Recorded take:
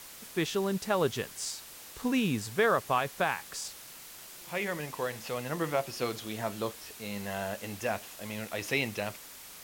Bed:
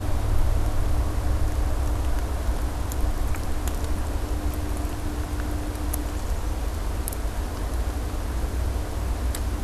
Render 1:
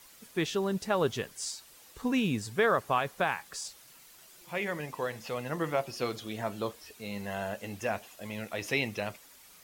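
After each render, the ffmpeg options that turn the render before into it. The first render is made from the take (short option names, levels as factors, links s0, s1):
-af "afftdn=nr=9:nf=-48"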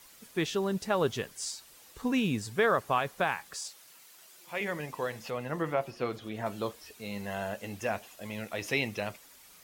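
-filter_complex "[0:a]asettb=1/sr,asplit=3[s0][s1][s2];[s0]atrim=end=3.544[s3];[s1]atrim=start=3.54:end=4.61,asetpts=PTS-STARTPTS,afade=t=in:d=0.004:c=qsin,afade=t=out:st=1.066:d=0.004:c=qsin,highpass=f=370:p=1[s4];[s2]atrim=start=4.606[s5];[s3][s4]acrossfade=d=0.004:c1=hsin:c2=qsin[s6];[s6][s5]acrossfade=d=0.004:c1=qsin:c2=hsin,asettb=1/sr,asplit=3[s7][s8][s9];[s7]atrim=end=5.304[s10];[s8]atrim=start=5.3:end=6.46,asetpts=PTS-STARTPTS,afade=t=in:d=0.004:c=qsin,afade=t=out:st=1.156:d=0.004:c=qsin,acrossover=split=2800[s11][s12];[s12]acompressor=threshold=0.00178:ratio=4:attack=1:release=60[s13];[s11][s13]amix=inputs=2:normalize=0[s14];[s9]atrim=start=6.456[s15];[s10][s14]acrossfade=d=0.004:c1=hsin:c2=qsin[s16];[s16][s15]acrossfade=d=0.004:c1=qsin:c2=hsin"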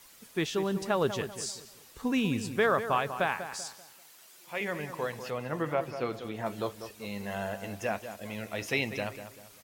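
-filter_complex "[0:a]asplit=2[s0][s1];[s1]adelay=194,lowpass=f=2300:p=1,volume=0.316,asplit=2[s2][s3];[s3]adelay=194,lowpass=f=2300:p=1,volume=0.37,asplit=2[s4][s5];[s5]adelay=194,lowpass=f=2300:p=1,volume=0.37,asplit=2[s6][s7];[s7]adelay=194,lowpass=f=2300:p=1,volume=0.37[s8];[s0][s2][s4][s6][s8]amix=inputs=5:normalize=0"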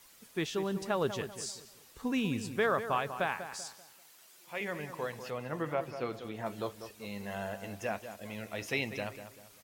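-af "volume=0.668"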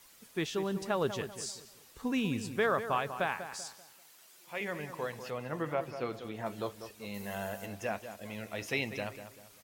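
-filter_complex "[0:a]asettb=1/sr,asplit=3[s0][s1][s2];[s0]atrim=end=7.144[s3];[s1]atrim=start=7.14:end=7.66,asetpts=PTS-STARTPTS,afade=t=in:d=0.004:c=qsin,afade=t=out:st=0.516:d=0.004:c=qsin,highshelf=f=8300:g=10.5[s4];[s2]atrim=start=7.656[s5];[s3][s4]acrossfade=d=0.004:c1=hsin:c2=qsin[s6];[s6][s5]acrossfade=d=0.004:c1=qsin:c2=hsin"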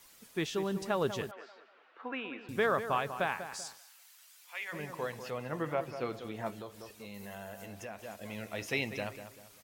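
-filter_complex "[0:a]asettb=1/sr,asplit=3[s0][s1][s2];[s0]atrim=end=1.314[s3];[s1]atrim=start=1.31:end=2.49,asetpts=PTS-STARTPTS,afade=t=in:d=0.004:c=qsin,afade=t=out:st=1.176:d=0.004:c=qsin,highpass=f=350:w=0.5412,highpass=f=350:w=1.3066,equalizer=f=420:t=q:w=4:g=-6,equalizer=f=680:t=q:w=4:g=4,equalizer=f=1400:t=q:w=4:g=9,lowpass=f=2700:w=0.5412,lowpass=f=2700:w=1.3066[s4];[s2]atrim=start=2.486[s5];[s3][s4]acrossfade=d=0.004:c1=hsin:c2=qsin[s6];[s6][s5]acrossfade=d=0.004:c1=qsin:c2=hsin,asplit=3[s7][s8][s9];[s7]afade=t=out:st=3.77:d=0.02[s10];[s8]highpass=1200,afade=t=in:st=3.77:d=0.02,afade=t=out:st=4.72:d=0.02[s11];[s9]afade=t=in:st=4.72:d=0.02[s12];[s10][s11][s12]amix=inputs=3:normalize=0,asettb=1/sr,asplit=3[s13][s14][s15];[s13]atrim=end=6.504[s16];[s14]atrim=start=6.5:end=7.99,asetpts=PTS-STARTPTS,afade=t=in:d=0.004:c=qsin,afade=t=out:st=1.486:d=0.004:c=qsin,acompressor=threshold=0.00708:ratio=2.5:attack=3.2:release=140:knee=1:detection=peak[s17];[s15]atrim=start=7.986[s18];[s16][s17]acrossfade=d=0.004:c1=hsin:c2=qsin[s19];[s19][s18]acrossfade=d=0.004:c1=qsin:c2=hsin"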